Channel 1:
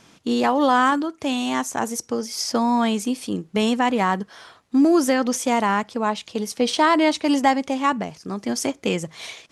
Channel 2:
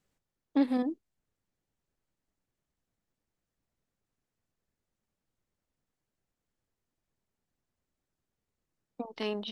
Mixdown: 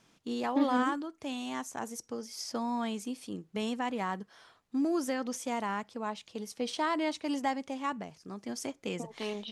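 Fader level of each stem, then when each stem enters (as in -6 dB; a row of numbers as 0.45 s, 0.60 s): -13.5 dB, -3.0 dB; 0.00 s, 0.00 s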